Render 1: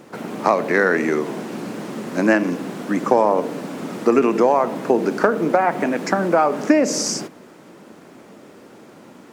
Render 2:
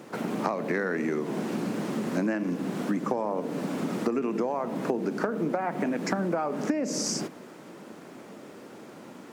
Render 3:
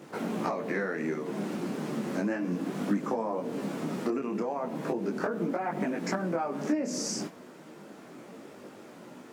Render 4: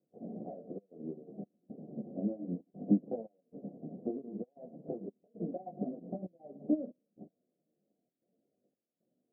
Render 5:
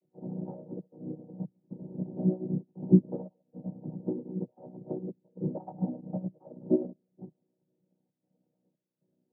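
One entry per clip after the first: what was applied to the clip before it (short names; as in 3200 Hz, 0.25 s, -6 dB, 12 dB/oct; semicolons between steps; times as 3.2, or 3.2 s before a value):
dynamic EQ 170 Hz, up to +7 dB, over -33 dBFS, Q 0.75; compressor 6:1, threshold -24 dBFS, peak gain reduction 17 dB; HPF 88 Hz; gain -1.5 dB
detuned doubles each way 12 cents; gain +1 dB
step gate "xxxxxx.xxxx..x" 115 bpm -12 dB; rippled Chebyshev low-pass 740 Hz, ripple 3 dB; upward expander 2.5:1, over -48 dBFS; gain +4 dB
chord vocoder major triad, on B2; gain +7 dB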